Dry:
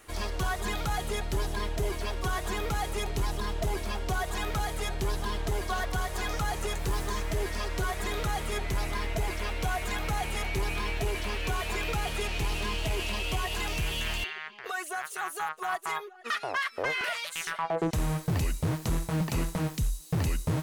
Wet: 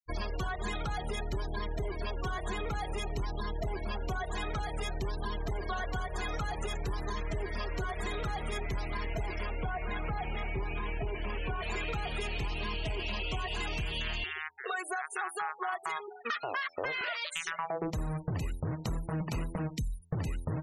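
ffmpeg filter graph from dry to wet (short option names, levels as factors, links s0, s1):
-filter_complex "[0:a]asettb=1/sr,asplit=3[s0][s1][s2];[s0]atrim=end=9.454[s3];[s1]atrim=start=9.45:end=11.63,asetpts=PTS-STARTPTS,afade=t=in:d=0.004:c=qsin,afade=t=out:st=2.176:d=0.004:c=qsin,lowpass=f=2500:p=1,aecho=1:1:134:0.0944,atrim=end_sample=96138[s4];[s2]atrim=start=11.626[s5];[s3][s4]acrossfade=d=0.004:c1=hsin:c2=qsin[s6];[s6][s5]acrossfade=d=0.004:c1=qsin:c2=hsin,afftfilt=real='re*gte(hypot(re,im),0.0158)':imag='im*gte(hypot(re,im),0.0158)':win_size=1024:overlap=0.75,bandreject=f=83.73:t=h:w=4,bandreject=f=167.46:t=h:w=4,bandreject=f=251.19:t=h:w=4,bandreject=f=334.92:t=h:w=4,bandreject=f=418.65:t=h:w=4,bandreject=f=502.38:t=h:w=4,bandreject=f=586.11:t=h:w=4,bandreject=f=669.84:t=h:w=4,bandreject=f=753.57:t=h:w=4,bandreject=f=837.3:t=h:w=4,bandreject=f=921.03:t=h:w=4,acompressor=threshold=0.0178:ratio=6,volume=1.5"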